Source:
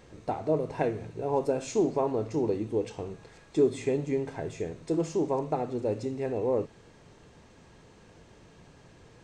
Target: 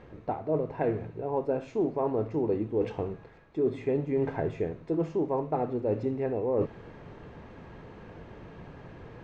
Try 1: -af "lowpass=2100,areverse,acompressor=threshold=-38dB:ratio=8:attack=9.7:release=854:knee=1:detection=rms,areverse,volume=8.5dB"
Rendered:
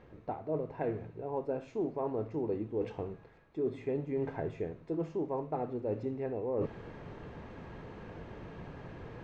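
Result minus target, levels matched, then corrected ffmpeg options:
downward compressor: peak gain reduction +6 dB
-af "lowpass=2100,areverse,acompressor=threshold=-31dB:ratio=8:attack=9.7:release=854:knee=1:detection=rms,areverse,volume=8.5dB"

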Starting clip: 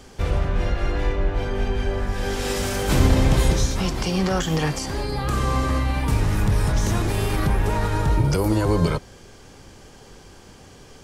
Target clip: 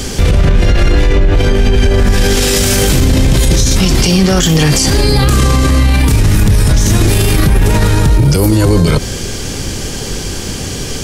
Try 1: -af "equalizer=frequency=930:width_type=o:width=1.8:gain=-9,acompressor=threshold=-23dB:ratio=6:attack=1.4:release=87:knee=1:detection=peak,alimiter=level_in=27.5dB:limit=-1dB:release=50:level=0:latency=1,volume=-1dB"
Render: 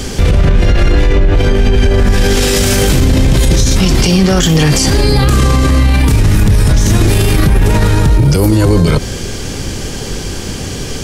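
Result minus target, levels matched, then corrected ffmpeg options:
8,000 Hz band −2.5 dB
-af "equalizer=frequency=930:width_type=o:width=1.8:gain=-9,acompressor=threshold=-23dB:ratio=6:attack=1.4:release=87:knee=1:detection=peak,highshelf=frequency=4100:gain=4,alimiter=level_in=27.5dB:limit=-1dB:release=50:level=0:latency=1,volume=-1dB"

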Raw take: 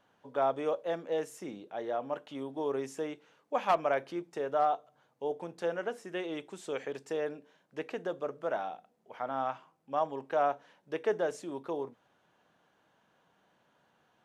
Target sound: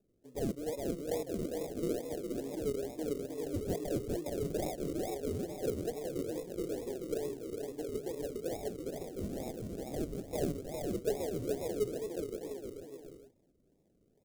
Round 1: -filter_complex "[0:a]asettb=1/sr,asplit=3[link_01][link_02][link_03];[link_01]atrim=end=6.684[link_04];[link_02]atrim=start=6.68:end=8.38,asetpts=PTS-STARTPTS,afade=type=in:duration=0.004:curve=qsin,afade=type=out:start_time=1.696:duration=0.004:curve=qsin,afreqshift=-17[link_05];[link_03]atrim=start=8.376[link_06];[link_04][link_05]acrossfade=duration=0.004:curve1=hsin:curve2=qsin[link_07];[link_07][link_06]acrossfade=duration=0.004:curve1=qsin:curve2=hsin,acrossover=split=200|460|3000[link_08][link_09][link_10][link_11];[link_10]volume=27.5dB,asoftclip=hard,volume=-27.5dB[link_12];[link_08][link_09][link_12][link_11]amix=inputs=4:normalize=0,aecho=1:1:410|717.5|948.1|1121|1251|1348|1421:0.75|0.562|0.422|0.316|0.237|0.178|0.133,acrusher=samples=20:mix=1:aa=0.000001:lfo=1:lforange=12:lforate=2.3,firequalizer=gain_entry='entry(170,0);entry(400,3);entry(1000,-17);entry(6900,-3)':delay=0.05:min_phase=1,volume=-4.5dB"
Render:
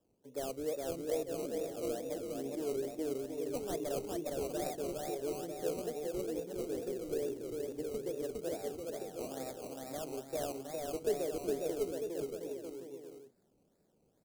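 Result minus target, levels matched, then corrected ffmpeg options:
sample-and-hold swept by an LFO: distortion −18 dB
-filter_complex "[0:a]asettb=1/sr,asplit=3[link_01][link_02][link_03];[link_01]atrim=end=6.684[link_04];[link_02]atrim=start=6.68:end=8.38,asetpts=PTS-STARTPTS,afade=type=in:duration=0.004:curve=qsin,afade=type=out:start_time=1.696:duration=0.004:curve=qsin,afreqshift=-17[link_05];[link_03]atrim=start=8.376[link_06];[link_04][link_05]acrossfade=duration=0.004:curve1=hsin:curve2=qsin[link_07];[link_07][link_06]acrossfade=duration=0.004:curve1=qsin:curve2=hsin,acrossover=split=200|460|3000[link_08][link_09][link_10][link_11];[link_10]volume=27.5dB,asoftclip=hard,volume=-27.5dB[link_12];[link_08][link_09][link_12][link_11]amix=inputs=4:normalize=0,aecho=1:1:410|717.5|948.1|1121|1251|1348|1421:0.75|0.562|0.422|0.316|0.237|0.178|0.133,acrusher=samples=41:mix=1:aa=0.000001:lfo=1:lforange=24.6:lforate=2.3,firequalizer=gain_entry='entry(170,0);entry(400,3);entry(1000,-17);entry(6900,-3)':delay=0.05:min_phase=1,volume=-4.5dB"

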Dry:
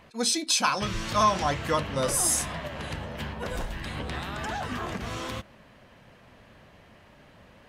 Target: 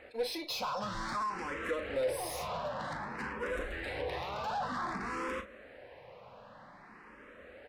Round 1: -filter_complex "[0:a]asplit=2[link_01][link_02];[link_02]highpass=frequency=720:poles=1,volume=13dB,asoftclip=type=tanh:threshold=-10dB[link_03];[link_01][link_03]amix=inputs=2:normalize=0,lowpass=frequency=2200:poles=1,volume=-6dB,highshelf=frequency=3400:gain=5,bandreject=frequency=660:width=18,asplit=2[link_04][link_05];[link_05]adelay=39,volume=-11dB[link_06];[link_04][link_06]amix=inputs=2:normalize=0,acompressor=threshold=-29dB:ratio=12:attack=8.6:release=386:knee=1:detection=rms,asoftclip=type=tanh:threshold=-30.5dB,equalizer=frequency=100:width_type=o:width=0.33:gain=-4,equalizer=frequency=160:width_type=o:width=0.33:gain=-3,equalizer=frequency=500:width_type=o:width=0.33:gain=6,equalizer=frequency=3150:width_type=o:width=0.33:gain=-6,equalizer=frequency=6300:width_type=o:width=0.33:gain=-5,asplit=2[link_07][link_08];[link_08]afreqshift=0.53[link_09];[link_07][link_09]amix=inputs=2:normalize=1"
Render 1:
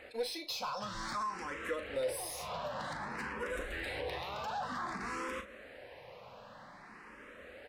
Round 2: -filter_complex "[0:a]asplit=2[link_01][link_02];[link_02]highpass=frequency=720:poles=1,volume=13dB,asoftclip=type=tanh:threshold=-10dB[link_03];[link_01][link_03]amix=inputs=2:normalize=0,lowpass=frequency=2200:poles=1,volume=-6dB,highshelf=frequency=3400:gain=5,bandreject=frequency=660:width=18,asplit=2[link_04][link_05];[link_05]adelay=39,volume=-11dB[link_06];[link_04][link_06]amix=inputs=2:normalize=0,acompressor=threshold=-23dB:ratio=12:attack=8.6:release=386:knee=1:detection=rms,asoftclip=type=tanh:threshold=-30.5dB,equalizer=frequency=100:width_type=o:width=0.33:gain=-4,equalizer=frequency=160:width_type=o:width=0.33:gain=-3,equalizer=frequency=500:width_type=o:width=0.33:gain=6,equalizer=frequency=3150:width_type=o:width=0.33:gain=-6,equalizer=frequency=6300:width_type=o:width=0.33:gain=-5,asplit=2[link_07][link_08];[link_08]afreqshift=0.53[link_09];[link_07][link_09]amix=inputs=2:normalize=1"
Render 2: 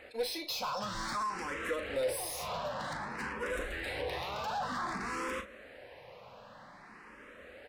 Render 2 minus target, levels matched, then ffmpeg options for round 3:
8,000 Hz band +4.0 dB
-filter_complex "[0:a]asplit=2[link_01][link_02];[link_02]highpass=frequency=720:poles=1,volume=13dB,asoftclip=type=tanh:threshold=-10dB[link_03];[link_01][link_03]amix=inputs=2:normalize=0,lowpass=frequency=2200:poles=1,volume=-6dB,highshelf=frequency=3400:gain=-4.5,bandreject=frequency=660:width=18,asplit=2[link_04][link_05];[link_05]adelay=39,volume=-11dB[link_06];[link_04][link_06]amix=inputs=2:normalize=0,acompressor=threshold=-23dB:ratio=12:attack=8.6:release=386:knee=1:detection=rms,asoftclip=type=tanh:threshold=-30.5dB,equalizer=frequency=100:width_type=o:width=0.33:gain=-4,equalizer=frequency=160:width_type=o:width=0.33:gain=-3,equalizer=frequency=500:width_type=o:width=0.33:gain=6,equalizer=frequency=3150:width_type=o:width=0.33:gain=-6,equalizer=frequency=6300:width_type=o:width=0.33:gain=-5,asplit=2[link_07][link_08];[link_08]afreqshift=0.53[link_09];[link_07][link_09]amix=inputs=2:normalize=1"

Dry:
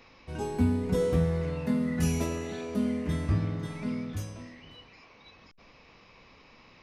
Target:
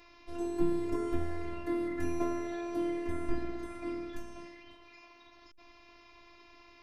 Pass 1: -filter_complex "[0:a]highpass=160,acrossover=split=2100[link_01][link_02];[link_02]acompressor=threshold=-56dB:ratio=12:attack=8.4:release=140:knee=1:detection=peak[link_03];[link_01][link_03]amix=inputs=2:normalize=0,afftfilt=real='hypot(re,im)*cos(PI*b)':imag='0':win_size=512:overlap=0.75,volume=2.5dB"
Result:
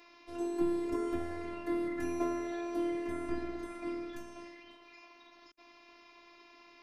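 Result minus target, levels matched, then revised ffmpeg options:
125 Hz band −6.5 dB
-filter_complex "[0:a]acrossover=split=2100[link_01][link_02];[link_02]acompressor=threshold=-56dB:ratio=12:attack=8.4:release=140:knee=1:detection=peak[link_03];[link_01][link_03]amix=inputs=2:normalize=0,afftfilt=real='hypot(re,im)*cos(PI*b)':imag='0':win_size=512:overlap=0.75,volume=2.5dB"

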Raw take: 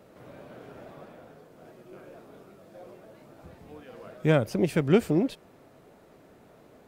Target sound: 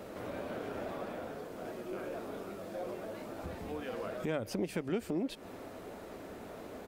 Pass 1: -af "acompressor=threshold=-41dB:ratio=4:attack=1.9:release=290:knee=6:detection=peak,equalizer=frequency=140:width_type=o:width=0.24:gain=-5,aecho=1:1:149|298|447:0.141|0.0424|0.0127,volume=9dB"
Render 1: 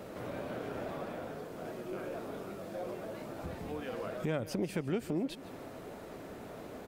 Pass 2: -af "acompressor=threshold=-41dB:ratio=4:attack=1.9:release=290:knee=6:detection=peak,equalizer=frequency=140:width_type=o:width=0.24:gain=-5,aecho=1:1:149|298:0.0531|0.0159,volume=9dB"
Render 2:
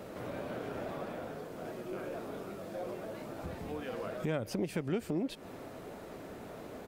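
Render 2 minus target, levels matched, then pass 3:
125 Hz band +3.0 dB
-af "acompressor=threshold=-41dB:ratio=4:attack=1.9:release=290:knee=6:detection=peak,equalizer=frequency=140:width_type=o:width=0.24:gain=-16.5,aecho=1:1:149|298:0.0531|0.0159,volume=9dB"

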